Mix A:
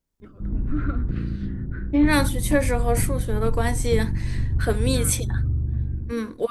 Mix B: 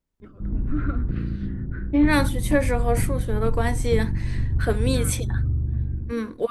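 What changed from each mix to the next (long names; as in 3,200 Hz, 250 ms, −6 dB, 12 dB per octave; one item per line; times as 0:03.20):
master: add bass and treble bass 0 dB, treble −5 dB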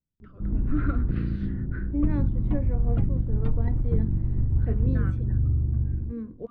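second voice: add resonant band-pass 120 Hz, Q 1.2
master: add high-frequency loss of the air 73 metres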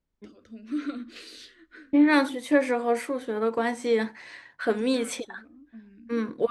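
first voice: remove low-pass with resonance 1,400 Hz, resonance Q 2.2
second voice: remove resonant band-pass 120 Hz, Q 1.2
background: muted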